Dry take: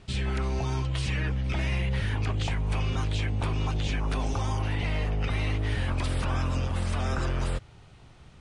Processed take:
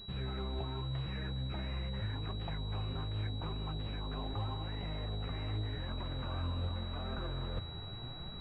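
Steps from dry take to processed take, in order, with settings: reverse; compression 20:1, threshold -40 dBFS, peak gain reduction 17.5 dB; reverse; flange 0.84 Hz, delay 4.3 ms, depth 8.4 ms, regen +47%; class-D stage that switches slowly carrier 3.9 kHz; trim +10.5 dB

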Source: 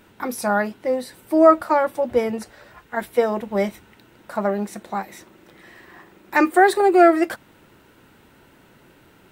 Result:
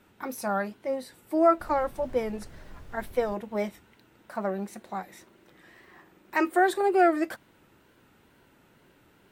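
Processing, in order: 1.59–3.34 s: added noise brown -35 dBFS; wow and flutter 80 cents; trim -8 dB

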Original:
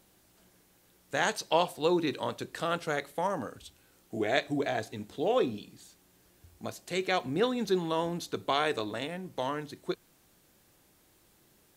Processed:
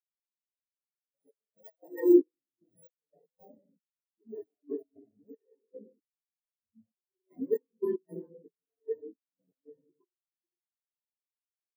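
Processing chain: bit-reversed sample order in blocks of 32 samples; bass shelf 66 Hz +6 dB; delay 119 ms -13 dB; reverberation RT60 1.4 s, pre-delay 104 ms, DRR -10.5 dB; trance gate "x.xxx...xx.." 115 bpm -12 dB; spectral contrast expander 4:1; trim -5.5 dB

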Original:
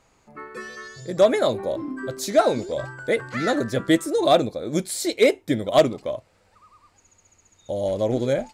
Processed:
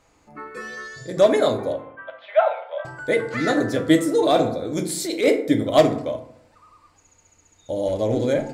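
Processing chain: 1.73–2.85 s: Chebyshev band-pass 570–3300 Hz, order 5; FDN reverb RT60 0.71 s, low-frequency decay 1.2×, high-frequency decay 0.5×, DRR 4.5 dB; 4.23–5.36 s: transient shaper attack -8 dB, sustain +1 dB

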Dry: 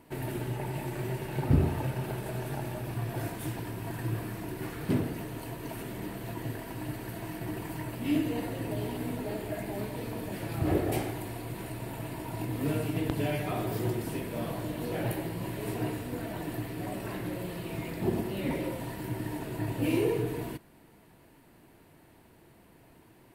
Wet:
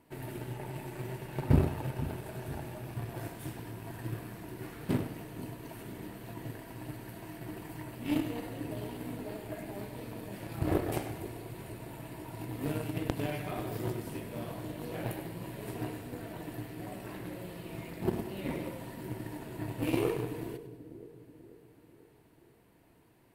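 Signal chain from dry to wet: Chebyshev shaper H 6 -31 dB, 7 -22 dB, 8 -29 dB, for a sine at -10.5 dBFS; two-band feedback delay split 530 Hz, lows 488 ms, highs 99 ms, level -13 dB

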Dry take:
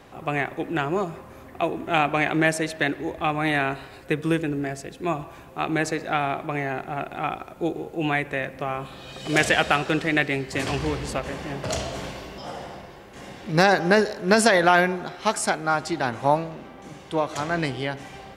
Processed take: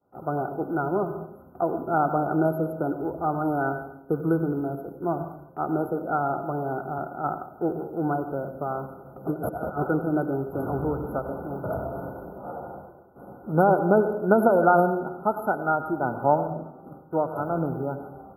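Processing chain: rattle on loud lows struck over -35 dBFS, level -23 dBFS; 9.27–9.87 s: compressor with a negative ratio -26 dBFS, ratio -0.5; FFT band-reject 1.5–11 kHz; expander -38 dBFS; comb of notches 1.1 kHz; on a send at -11 dB: reverberation RT60 0.70 s, pre-delay 86 ms; 6.98–7.54 s: on the sum: three bands expanded up and down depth 70%

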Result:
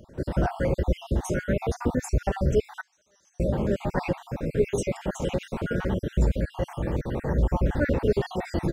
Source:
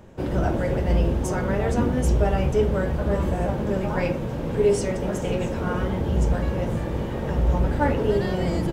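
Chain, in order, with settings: random holes in the spectrogram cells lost 54%; 2.81–3.40 s: band-pass filter 6 kHz, Q 10

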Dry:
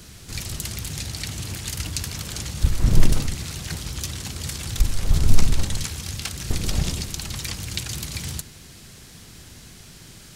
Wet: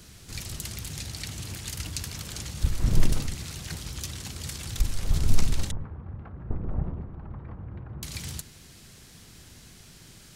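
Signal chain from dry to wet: 5.71–8.03 s: low-pass 1.2 kHz 24 dB/octave; trim -5.5 dB

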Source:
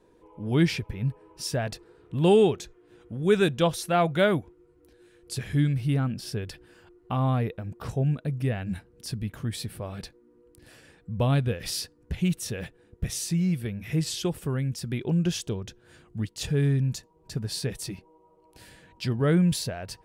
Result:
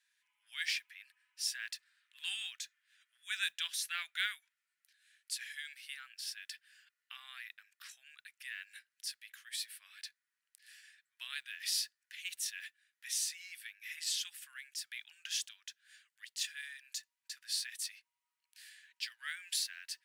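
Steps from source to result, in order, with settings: elliptic high-pass 1.7 kHz, stop band 80 dB; modulation noise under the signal 30 dB; trim -2 dB

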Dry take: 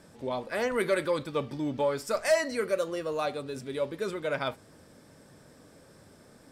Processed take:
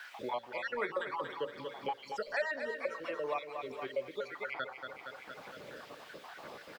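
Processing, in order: random holes in the spectrogram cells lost 58%; added noise blue -58 dBFS; three-band isolator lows -15 dB, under 510 Hz, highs -24 dB, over 4.3 kHz; hum notches 60/120/180/240/300/360/420/480/540/600 Hz; on a send: feedback delay 223 ms, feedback 49%, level -9.5 dB; on the sum: speed mistake 25 fps video run at 24 fps; three bands compressed up and down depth 70%

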